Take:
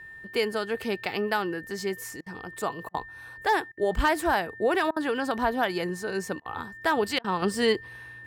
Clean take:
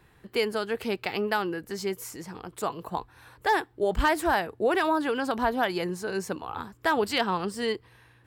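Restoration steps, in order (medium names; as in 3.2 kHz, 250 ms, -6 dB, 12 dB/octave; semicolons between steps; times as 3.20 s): band-stop 1.8 kHz, Q 30; interpolate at 2.21/2.89/3.72/4.91/6.40/7.19 s, 52 ms; trim 0 dB, from 7.42 s -5.5 dB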